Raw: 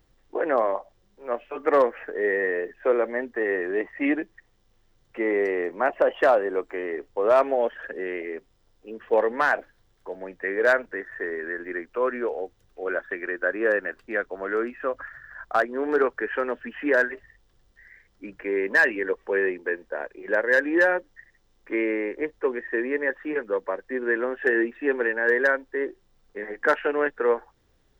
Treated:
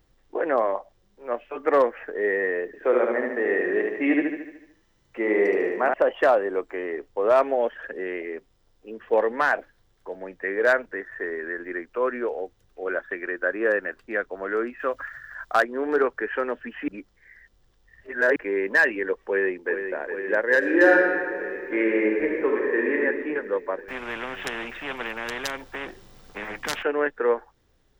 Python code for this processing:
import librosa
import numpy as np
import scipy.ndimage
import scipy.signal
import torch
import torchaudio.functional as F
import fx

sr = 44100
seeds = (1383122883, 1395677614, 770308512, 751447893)

y = fx.echo_feedback(x, sr, ms=74, feedback_pct=55, wet_db=-3.0, at=(2.66, 5.94))
y = fx.high_shelf(y, sr, hz=2200.0, db=9.0, at=(14.79, 15.64))
y = fx.echo_throw(y, sr, start_s=19.25, length_s=0.53, ms=410, feedback_pct=85, wet_db=-7.5)
y = fx.reverb_throw(y, sr, start_s=20.58, length_s=2.42, rt60_s=1.7, drr_db=-2.0)
y = fx.spectral_comp(y, sr, ratio=4.0, at=(23.88, 26.83))
y = fx.edit(y, sr, fx.reverse_span(start_s=16.88, length_s=1.48), tone=tone)